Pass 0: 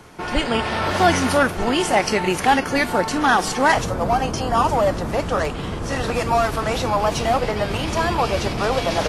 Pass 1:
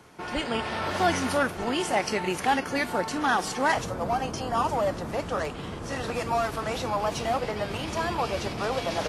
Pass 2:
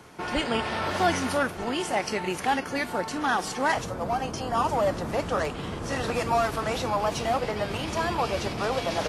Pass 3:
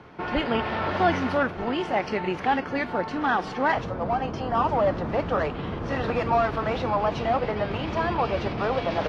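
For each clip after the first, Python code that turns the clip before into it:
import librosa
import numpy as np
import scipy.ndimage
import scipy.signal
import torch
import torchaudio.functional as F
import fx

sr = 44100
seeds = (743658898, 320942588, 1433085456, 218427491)

y1 = fx.highpass(x, sr, hz=83.0, slope=6)
y1 = y1 * 10.0 ** (-7.5 / 20.0)
y2 = fx.rider(y1, sr, range_db=10, speed_s=2.0)
y3 = fx.air_absorb(y2, sr, metres=280.0)
y3 = y3 * 10.0 ** (3.0 / 20.0)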